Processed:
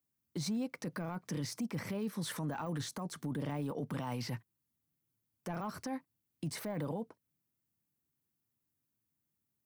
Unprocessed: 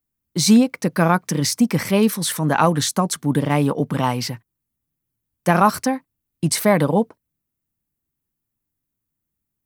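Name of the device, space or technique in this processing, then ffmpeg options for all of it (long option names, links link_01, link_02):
broadcast voice chain: -af "highpass=frequency=86:width=0.5412,highpass=frequency=86:width=1.3066,deesser=0.8,acompressor=threshold=-25dB:ratio=4,equalizer=frequency=5300:width_type=o:width=0.77:gain=2,alimiter=level_in=1.5dB:limit=-24dB:level=0:latency=1:release=15,volume=-1.5dB,volume=-4.5dB"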